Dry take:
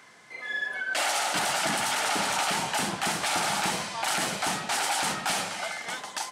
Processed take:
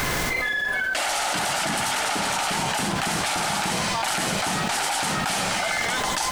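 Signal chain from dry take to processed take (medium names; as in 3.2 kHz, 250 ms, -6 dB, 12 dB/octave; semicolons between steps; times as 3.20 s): bass shelf 110 Hz +12 dB; added noise pink -53 dBFS; level flattener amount 100%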